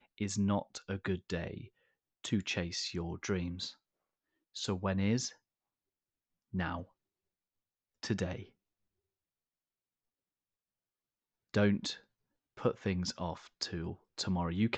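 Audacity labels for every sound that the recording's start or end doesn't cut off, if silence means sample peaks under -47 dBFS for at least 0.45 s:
2.240000	3.710000	sound
4.560000	5.320000	sound
6.530000	6.840000	sound
8.030000	8.440000	sound
11.540000	11.970000	sound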